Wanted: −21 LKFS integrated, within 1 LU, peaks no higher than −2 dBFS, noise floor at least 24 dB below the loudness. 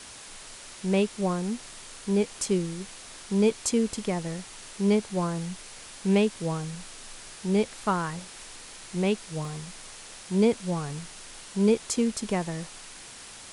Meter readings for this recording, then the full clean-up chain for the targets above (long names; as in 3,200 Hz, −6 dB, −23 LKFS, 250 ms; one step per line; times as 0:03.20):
number of dropouts 1; longest dropout 1.9 ms; background noise floor −45 dBFS; target noise floor −52 dBFS; integrated loudness −28.0 LKFS; sample peak −10.5 dBFS; target loudness −21.0 LKFS
→ repair the gap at 0:09.45, 1.9 ms
noise reduction from a noise print 7 dB
level +7 dB